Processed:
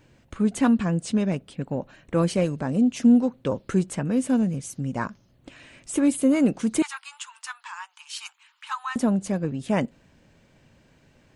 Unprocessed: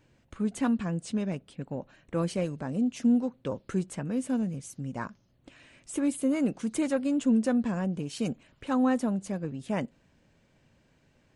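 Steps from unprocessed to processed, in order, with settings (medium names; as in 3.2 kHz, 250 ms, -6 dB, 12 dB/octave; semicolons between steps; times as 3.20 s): 6.82–8.96 s: rippled Chebyshev high-pass 870 Hz, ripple 3 dB; trim +7 dB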